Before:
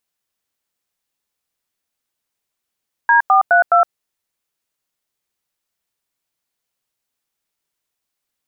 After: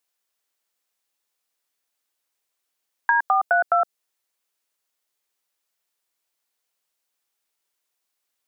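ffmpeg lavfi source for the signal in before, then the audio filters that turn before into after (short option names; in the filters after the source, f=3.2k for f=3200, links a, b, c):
-f lavfi -i "aevalsrc='0.282*clip(min(mod(t,0.209),0.115-mod(t,0.209))/0.002,0,1)*(eq(floor(t/0.209),0)*(sin(2*PI*941*mod(t,0.209))+sin(2*PI*1633*mod(t,0.209)))+eq(floor(t/0.209),1)*(sin(2*PI*770*mod(t,0.209))+sin(2*PI*1209*mod(t,0.209)))+eq(floor(t/0.209),2)*(sin(2*PI*697*mod(t,0.209))+sin(2*PI*1477*mod(t,0.209)))+eq(floor(t/0.209),3)*(sin(2*PI*697*mod(t,0.209))+sin(2*PI*1336*mod(t,0.209))))':d=0.836:s=44100"
-filter_complex "[0:a]acrossover=split=420|3000[a][b][c];[b]acompressor=threshold=-18dB:ratio=6[d];[a][d][c]amix=inputs=3:normalize=0,bass=f=250:g=-13,treble=f=4k:g=1"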